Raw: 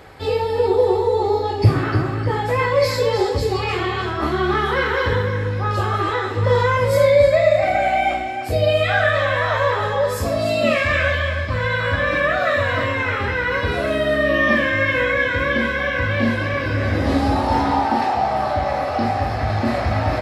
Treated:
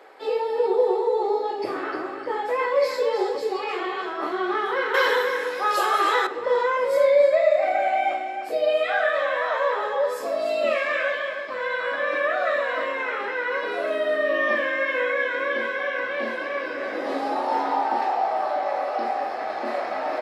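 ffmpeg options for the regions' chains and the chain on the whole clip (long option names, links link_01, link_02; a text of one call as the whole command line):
ffmpeg -i in.wav -filter_complex "[0:a]asettb=1/sr,asplit=3[link_01][link_02][link_03];[link_01]atrim=end=4.944[link_04];[link_02]atrim=start=4.94:end=6.27,asetpts=PTS-STARTPTS,afade=type=in:duration=0.004:curve=qsin,afade=type=out:start_time=1.326:duration=0.004:curve=qsin,aemphasis=mode=production:type=riaa,acontrast=55[link_05];[link_03]atrim=start=6.266[link_06];[link_04][link_05]acrossfade=duration=0.004:curve1=hsin:curve2=qsin[link_07];[link_07][link_06]acrossfade=duration=0.004:curve1=qsin:curve2=hsin,highpass=frequency=360:width=0.5412,highpass=frequency=360:width=1.3066,highshelf=frequency=2500:gain=-8.5,volume=-3dB" out.wav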